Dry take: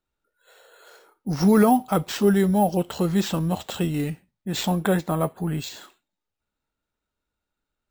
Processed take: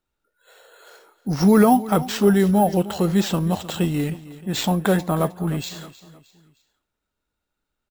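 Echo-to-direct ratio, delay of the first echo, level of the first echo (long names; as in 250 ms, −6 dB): −16.0 dB, 310 ms, −17.0 dB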